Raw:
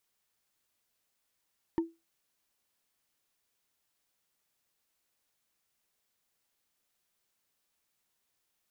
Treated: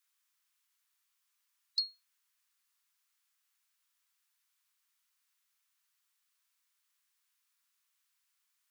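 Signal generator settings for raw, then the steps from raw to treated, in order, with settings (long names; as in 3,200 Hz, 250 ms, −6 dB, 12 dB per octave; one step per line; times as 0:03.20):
struck wood, lowest mode 331 Hz, decay 0.23 s, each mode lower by 10 dB, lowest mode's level −22 dB
neighbouring bands swapped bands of 4,000 Hz
Butterworth high-pass 1,000 Hz 36 dB per octave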